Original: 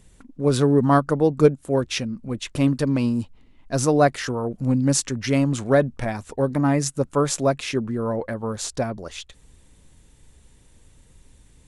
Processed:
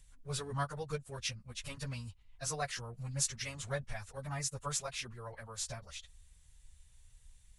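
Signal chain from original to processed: bass shelf 240 Hz +7 dB; plain phase-vocoder stretch 0.65×; amplifier tone stack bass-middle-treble 10-0-10; trim -3.5 dB

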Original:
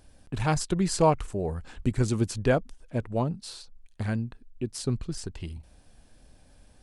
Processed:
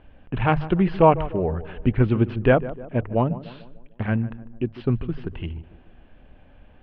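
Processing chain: elliptic low-pass 3 kHz, stop band 60 dB; hum notches 50/100/150 Hz; tape echo 150 ms, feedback 59%, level -13.5 dB, low-pass 1 kHz; trim +7 dB

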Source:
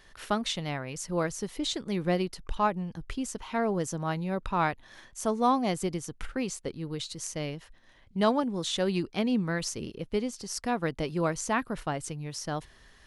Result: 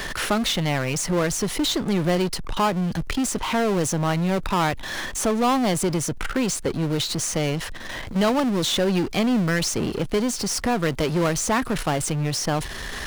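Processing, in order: power-law waveshaper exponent 0.5; three bands compressed up and down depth 40%

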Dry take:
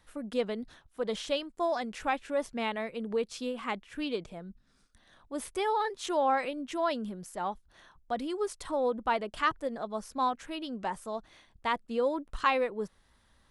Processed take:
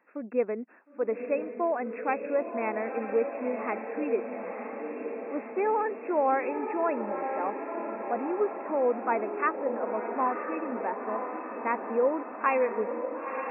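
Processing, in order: brick-wall FIR band-pass 200–2700 Hz; peaking EQ 430 Hz +4.5 dB 0.96 oct; on a send: echo that smears into a reverb 965 ms, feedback 65%, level -6.5 dB

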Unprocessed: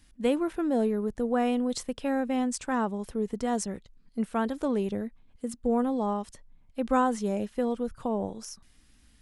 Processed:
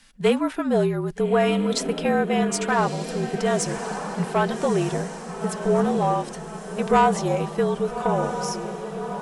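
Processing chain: on a send: echo that smears into a reverb 1247 ms, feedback 54%, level -9 dB; on the sum: flange 0.97 Hz, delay 3.2 ms, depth 1.8 ms, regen -50%; frequency shift -46 Hz; overdrive pedal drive 11 dB, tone 6.1 kHz, clips at -15.5 dBFS; trim +9 dB

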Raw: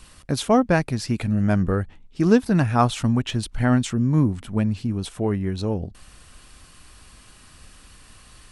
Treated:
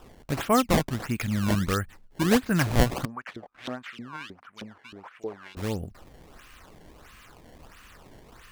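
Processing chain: high-order bell 1.8 kHz +9 dB; decimation with a swept rate 20×, swing 160% 1.5 Hz; 3.05–5.57 s: LFO band-pass saw up 3.2 Hz 390–3600 Hz; trim -5.5 dB

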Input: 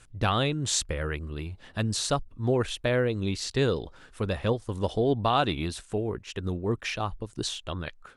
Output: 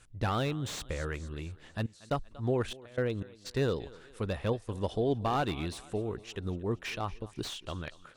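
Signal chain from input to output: 1.78–3.45 s: trance gate "..xx..xxxxx" 121 bpm -24 dB; thinning echo 235 ms, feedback 49%, high-pass 170 Hz, level -20.5 dB; slew-rate limiter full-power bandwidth 98 Hz; trim -4.5 dB

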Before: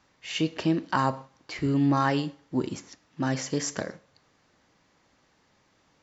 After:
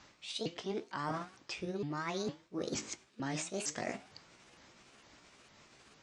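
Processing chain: sawtooth pitch modulation +6.5 st, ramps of 457 ms; low-pass 5.6 kHz 12 dB/octave; treble shelf 3.6 kHz +9.5 dB; reverse; compression 16:1, threshold -39 dBFS, peak gain reduction 20.5 dB; reverse; trim +4.5 dB

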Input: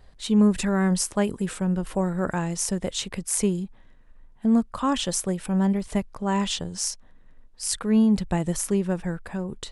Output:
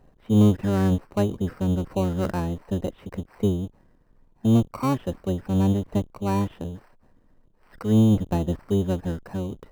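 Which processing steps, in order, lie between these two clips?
octave divider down 1 oct, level +2 dB; Gaussian low-pass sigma 5 samples; bass shelf 97 Hz -11.5 dB; in parallel at -5 dB: sample-and-hold 13×; on the sum: trim -2.5 dB

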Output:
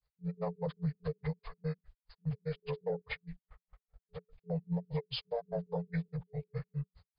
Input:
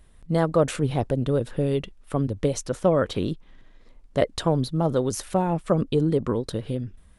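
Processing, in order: frequency axis rescaled in octaves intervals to 79%; granulator 115 ms, grains 4.9 per s, spray 37 ms, pitch spread up and down by 0 st; gate -55 dBFS, range -21 dB; FFT band-reject 180–430 Hz; peak limiter -27.5 dBFS, peak gain reduction 12.5 dB; trim +1 dB

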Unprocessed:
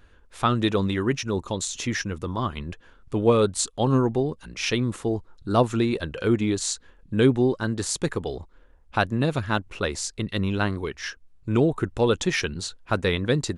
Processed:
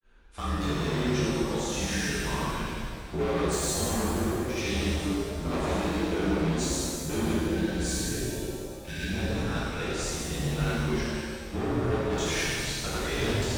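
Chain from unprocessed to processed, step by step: granulator 152 ms, grains 20 per s, pitch spread up and down by 0 st; hard clipper -26.5 dBFS, distortion -7 dB; frequency shift -46 Hz; spectral selection erased 7.30–9.08 s, 450–1500 Hz; pitch-shifted reverb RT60 2 s, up +7 st, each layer -8 dB, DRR -9 dB; trim -7 dB

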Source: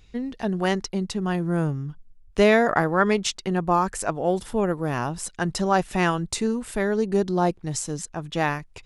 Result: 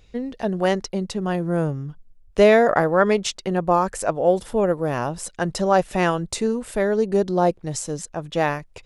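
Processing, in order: peaking EQ 550 Hz +8 dB 0.65 oct

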